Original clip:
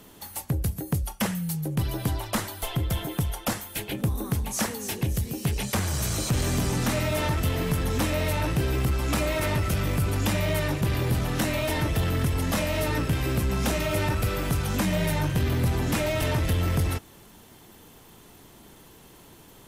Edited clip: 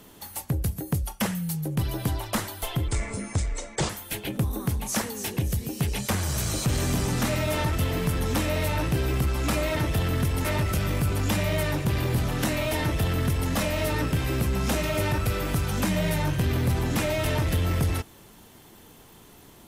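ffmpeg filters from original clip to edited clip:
ffmpeg -i in.wav -filter_complex "[0:a]asplit=5[link_01][link_02][link_03][link_04][link_05];[link_01]atrim=end=2.884[link_06];[link_02]atrim=start=2.88:end=3.54,asetpts=PTS-STARTPTS,asetrate=28665,aresample=44100,atrim=end_sample=44778,asetpts=PTS-STARTPTS[link_07];[link_03]atrim=start=3.536:end=9.412[link_08];[link_04]atrim=start=11.778:end=12.462[link_09];[link_05]atrim=start=9.408[link_10];[link_06][link_07]acrossfade=duration=0.004:curve1=hsin:curve2=hsin[link_11];[link_11][link_08]acrossfade=duration=0.004:curve1=hsin:curve2=hsin[link_12];[link_12][link_09]acrossfade=duration=0.004:curve1=hsin:curve2=hsin[link_13];[link_13][link_10]acrossfade=duration=0.004:curve1=hsin:curve2=hsin" out.wav

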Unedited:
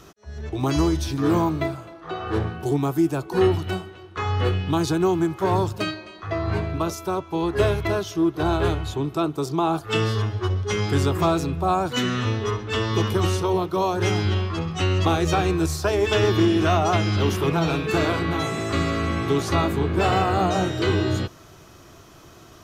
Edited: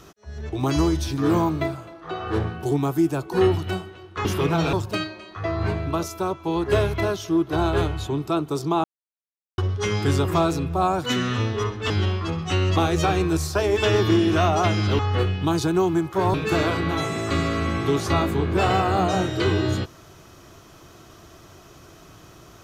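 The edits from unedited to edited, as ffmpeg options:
ffmpeg -i in.wav -filter_complex "[0:a]asplit=8[link_01][link_02][link_03][link_04][link_05][link_06][link_07][link_08];[link_01]atrim=end=4.252[link_09];[link_02]atrim=start=17.278:end=17.762[link_10];[link_03]atrim=start=5.598:end=9.71,asetpts=PTS-STARTPTS,afade=type=out:start_time=4.108:duration=0.004:curve=hsin[link_11];[link_04]atrim=start=9.71:end=10.45,asetpts=PTS-STARTPTS,volume=0[link_12];[link_05]atrim=start=10.45:end=12.772,asetpts=PTS-STARTPTS,afade=type=in:duration=0.004:curve=hsin[link_13];[link_06]atrim=start=14.188:end=17.282[link_14];[link_07]atrim=start=4.248:end=5.602[link_15];[link_08]atrim=start=17.758[link_16];[link_09][link_10]acrossfade=duration=0.004:curve1=hsin:curve2=hsin[link_17];[link_11][link_12][link_13]concat=n=3:v=0:a=1[link_18];[link_17][link_18]acrossfade=duration=0.004:curve1=hsin:curve2=hsin[link_19];[link_19][link_14]acrossfade=duration=0.004:curve1=hsin:curve2=hsin[link_20];[link_20][link_15]acrossfade=duration=0.004:curve1=hsin:curve2=hsin[link_21];[link_21][link_16]acrossfade=duration=0.004:curve1=hsin:curve2=hsin" out.wav

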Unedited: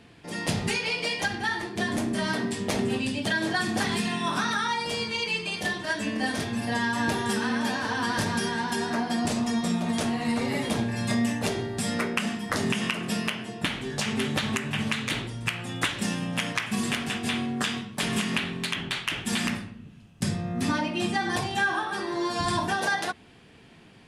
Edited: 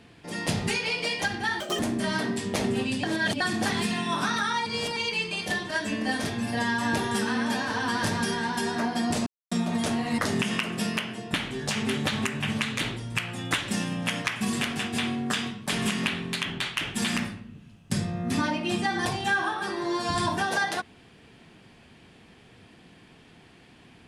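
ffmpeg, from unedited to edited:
ffmpeg -i in.wav -filter_complex "[0:a]asplit=10[link_01][link_02][link_03][link_04][link_05][link_06][link_07][link_08][link_09][link_10];[link_01]atrim=end=1.604[link_11];[link_02]atrim=start=1.6:end=1.94,asetpts=PTS-STARTPTS,asetrate=77175,aresample=44100[link_12];[link_03]atrim=start=1.936:end=3.182[link_13];[link_04]atrim=start=3.178:end=3.552,asetpts=PTS-STARTPTS,areverse[link_14];[link_05]atrim=start=3.548:end=4.812[link_15];[link_06]atrim=start=4.808:end=5.112,asetpts=PTS-STARTPTS,areverse[link_16];[link_07]atrim=start=5.108:end=9.41,asetpts=PTS-STARTPTS,afade=type=out:start_time=4.298:duration=0.004:curve=hsin[link_17];[link_08]atrim=start=9.41:end=9.66,asetpts=PTS-STARTPTS,volume=0[link_18];[link_09]atrim=start=9.66:end=10.332,asetpts=PTS-STARTPTS,afade=type=in:duration=0.004:curve=hsin[link_19];[link_10]atrim=start=12.488[link_20];[link_11][link_12]acrossfade=duration=0.004:curve1=hsin:curve2=hsin[link_21];[link_21][link_13]acrossfade=duration=0.004:curve1=hsin:curve2=hsin[link_22];[link_22][link_14]acrossfade=duration=0.004:curve1=hsin:curve2=hsin[link_23];[link_23][link_15]acrossfade=duration=0.004:curve1=hsin:curve2=hsin[link_24];[link_24][link_16]acrossfade=duration=0.004:curve1=hsin:curve2=hsin[link_25];[link_17][link_18][link_19]concat=n=3:v=0:a=1[link_26];[link_25][link_26]acrossfade=duration=0.004:curve1=hsin:curve2=hsin[link_27];[link_27][link_20]acrossfade=duration=0.004:curve1=hsin:curve2=hsin" out.wav

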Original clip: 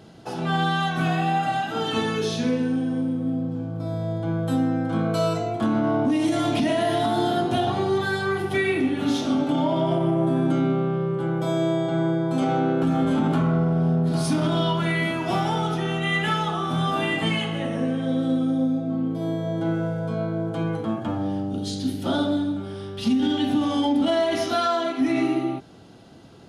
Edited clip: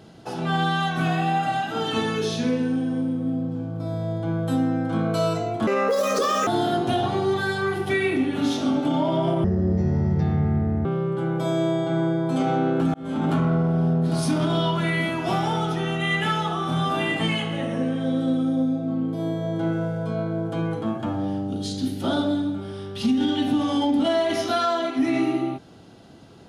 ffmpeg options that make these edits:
ffmpeg -i in.wav -filter_complex "[0:a]asplit=6[link_01][link_02][link_03][link_04][link_05][link_06];[link_01]atrim=end=5.674[link_07];[link_02]atrim=start=5.67:end=7.11,asetpts=PTS-STARTPTS,asetrate=79380,aresample=44100[link_08];[link_03]atrim=start=7.106:end=10.084[link_09];[link_04]atrim=start=10.08:end=10.87,asetpts=PTS-STARTPTS,asetrate=24696,aresample=44100,atrim=end_sample=62212,asetpts=PTS-STARTPTS[link_10];[link_05]atrim=start=10.866:end=12.96,asetpts=PTS-STARTPTS,afade=type=out:start_time=2.09:duration=0.004:curve=hsin[link_11];[link_06]atrim=start=12.96,asetpts=PTS-STARTPTS,afade=type=in:duration=0.36[link_12];[link_07][link_08]acrossfade=duration=0.004:curve1=hsin:curve2=hsin[link_13];[link_13][link_09]acrossfade=duration=0.004:curve1=hsin:curve2=hsin[link_14];[link_14][link_10]acrossfade=duration=0.004:curve1=hsin:curve2=hsin[link_15];[link_11][link_12]concat=n=2:v=0:a=1[link_16];[link_15][link_16]acrossfade=duration=0.004:curve1=hsin:curve2=hsin" out.wav

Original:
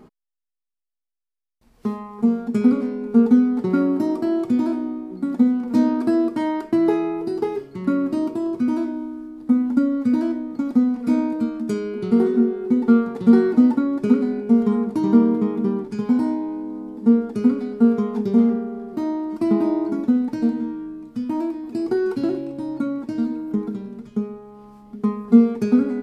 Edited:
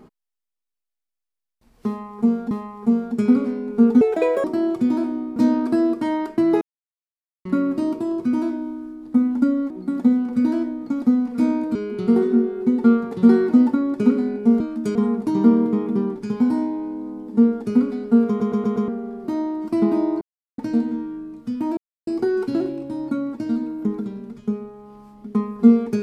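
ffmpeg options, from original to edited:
ffmpeg -i in.wav -filter_complex "[0:a]asplit=21[link_01][link_02][link_03][link_04][link_05][link_06][link_07][link_08][link_09][link_10][link_11][link_12][link_13][link_14][link_15][link_16][link_17][link_18][link_19][link_20][link_21];[link_01]atrim=end=2.512[link_22];[link_02]atrim=start=1.868:end=3.374[link_23];[link_03]atrim=start=3.37:end=4.13,asetpts=PTS-STARTPTS,asetrate=77616,aresample=44100,atrim=end_sample=19043,asetpts=PTS-STARTPTS[link_24];[link_04]atrim=start=4.126:end=5.052[link_25];[link_05]atrim=start=5.708:end=6.96,asetpts=PTS-STARTPTS,afade=type=out:start_time=1.248:duration=0.004:curve=hsin[link_26];[link_06]atrim=start=6.96:end=7.8,asetpts=PTS-STARTPTS,volume=0[link_27];[link_07]atrim=start=7.8:end=10.052,asetpts=PTS-STARTPTS,afade=type=in:duration=0.004:curve=hsin[link_28];[link_08]atrim=start=5.048:end=5.712[link_29];[link_09]atrim=start=10.048:end=11.442[link_30];[link_10]atrim=start=11.788:end=14.642[link_31];[link_11]atrim=start=11.438:end=11.792[link_32];[link_12]atrim=start=14.638:end=18.092[link_33];[link_13]atrim=start=17.968:end=18.092[link_34];[link_14]atrim=start=17.968:end=18.092[link_35];[link_15]atrim=start=17.968:end=18.092[link_36];[link_16]atrim=start=17.968:end=18.092[link_37];[link_17]atrim=start=18.568:end=19.9,asetpts=PTS-STARTPTS,afade=type=out:start_time=1.328:duration=0.004:curve=hsin[link_38];[link_18]atrim=start=19.9:end=20.27,asetpts=PTS-STARTPTS,volume=0[link_39];[link_19]atrim=start=20.27:end=21.46,asetpts=PTS-STARTPTS,afade=type=in:duration=0.004:curve=hsin,afade=type=out:start_time=1.186:duration=0.004:curve=hsin[link_40];[link_20]atrim=start=21.46:end=21.76,asetpts=PTS-STARTPTS,volume=0[link_41];[link_21]atrim=start=21.76,asetpts=PTS-STARTPTS,afade=type=in:duration=0.004:curve=hsin[link_42];[link_22][link_23]acrossfade=duration=0.004:curve1=hsin:curve2=hsin[link_43];[link_43][link_24]acrossfade=duration=0.004:curve1=hsin:curve2=hsin[link_44];[link_44][link_25]acrossfade=duration=0.004:curve1=hsin:curve2=hsin[link_45];[link_26][link_27][link_28]concat=n=3:v=0:a=1[link_46];[link_45][link_46]acrossfade=duration=0.004:curve1=hsin:curve2=hsin[link_47];[link_47][link_29]acrossfade=duration=0.004:curve1=hsin:curve2=hsin[link_48];[link_48][link_30]acrossfade=duration=0.004:curve1=hsin:curve2=hsin[link_49];[link_49][link_31]acrossfade=duration=0.004:curve1=hsin:curve2=hsin[link_50];[link_50][link_32]acrossfade=duration=0.004:curve1=hsin:curve2=hsin[link_51];[link_51][link_33]acrossfade=duration=0.004:curve1=hsin:curve2=hsin[link_52];[link_52][link_34]acrossfade=duration=0.004:curve1=hsin:curve2=hsin[link_53];[link_53][link_35]acrossfade=duration=0.004:curve1=hsin:curve2=hsin[link_54];[link_54][link_36]acrossfade=duration=0.004:curve1=hsin:curve2=hsin[link_55];[link_55][link_37]acrossfade=duration=0.004:curve1=hsin:curve2=hsin[link_56];[link_38][link_39][link_40][link_41][link_42]concat=n=5:v=0:a=1[link_57];[link_56][link_57]acrossfade=duration=0.004:curve1=hsin:curve2=hsin" out.wav

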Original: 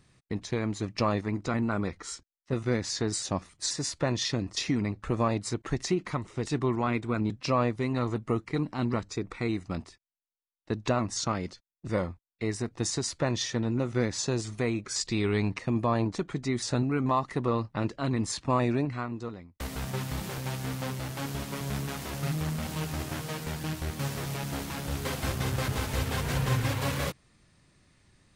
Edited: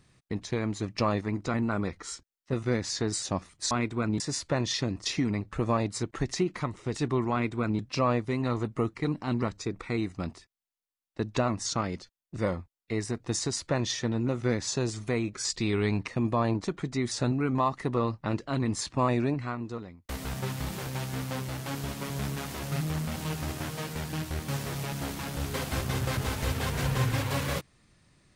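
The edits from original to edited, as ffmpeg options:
ffmpeg -i in.wav -filter_complex "[0:a]asplit=3[link_01][link_02][link_03];[link_01]atrim=end=3.712[link_04];[link_02]atrim=start=6.828:end=7.322[link_05];[link_03]atrim=start=3.708[link_06];[link_04][link_05]acrossfade=duration=0.004:curve1=hsin:curve2=hsin[link_07];[link_07][link_06]acrossfade=duration=0.004:curve1=hsin:curve2=hsin" out.wav

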